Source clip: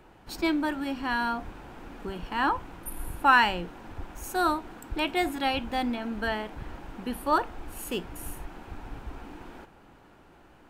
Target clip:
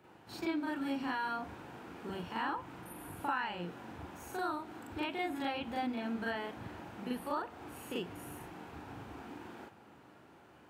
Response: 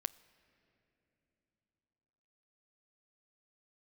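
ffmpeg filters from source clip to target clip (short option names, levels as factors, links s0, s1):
-filter_complex "[0:a]acrossover=split=3700[s0][s1];[s1]acompressor=threshold=0.00447:ratio=4:attack=1:release=60[s2];[s0][s2]amix=inputs=2:normalize=0,highpass=f=89:w=0.5412,highpass=f=89:w=1.3066,acompressor=threshold=0.0316:ratio=6,asplit=2[s3][s4];[1:a]atrim=start_sample=2205,adelay=40[s5];[s4][s5]afir=irnorm=-1:irlink=0,volume=1.68[s6];[s3][s6]amix=inputs=2:normalize=0,volume=0.398"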